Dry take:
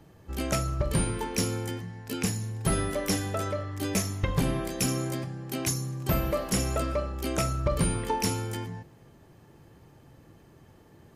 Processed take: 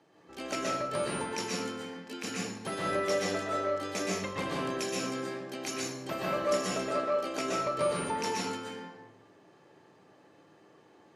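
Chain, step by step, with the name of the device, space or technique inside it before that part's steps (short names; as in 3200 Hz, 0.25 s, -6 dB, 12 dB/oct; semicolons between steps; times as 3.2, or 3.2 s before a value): supermarket ceiling speaker (BPF 340–6600 Hz; reverb RT60 0.85 s, pre-delay 0.115 s, DRR -4 dB); gain -5 dB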